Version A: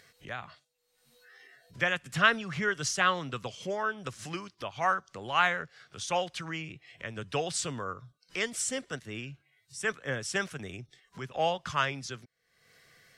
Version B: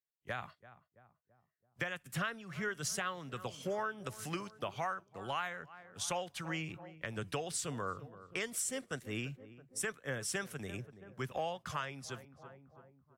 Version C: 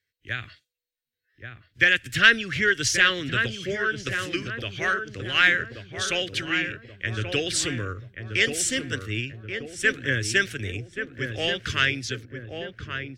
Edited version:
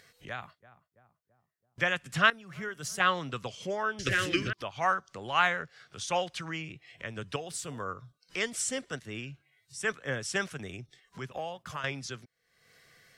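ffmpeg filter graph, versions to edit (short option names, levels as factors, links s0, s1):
-filter_complex "[1:a]asplit=4[s0][s1][s2][s3];[0:a]asplit=6[s4][s5][s6][s7][s8][s9];[s4]atrim=end=0.412[s10];[s0]atrim=start=0.408:end=1.782[s11];[s5]atrim=start=1.778:end=2.302[s12];[s1]atrim=start=2.298:end=3.002[s13];[s6]atrim=start=2.998:end=3.992[s14];[2:a]atrim=start=3.988:end=4.532[s15];[s7]atrim=start=4.528:end=7.362[s16];[s2]atrim=start=7.358:end=7.802[s17];[s8]atrim=start=7.798:end=11.322[s18];[s3]atrim=start=11.318:end=11.842[s19];[s9]atrim=start=11.838[s20];[s10][s11]acrossfade=d=0.004:c1=hsin:c2=hsin[s21];[s21][s12]acrossfade=d=0.004:c1=hsin:c2=hsin[s22];[s22][s13]acrossfade=d=0.004:c1=hsin:c2=hsin[s23];[s23][s14]acrossfade=d=0.004:c1=hsin:c2=hsin[s24];[s24][s15]acrossfade=d=0.004:c1=hsin:c2=hsin[s25];[s25][s16]acrossfade=d=0.004:c1=hsin:c2=hsin[s26];[s26][s17]acrossfade=d=0.004:c1=hsin:c2=hsin[s27];[s27][s18]acrossfade=d=0.004:c1=hsin:c2=hsin[s28];[s28][s19]acrossfade=d=0.004:c1=hsin:c2=hsin[s29];[s29][s20]acrossfade=d=0.004:c1=hsin:c2=hsin"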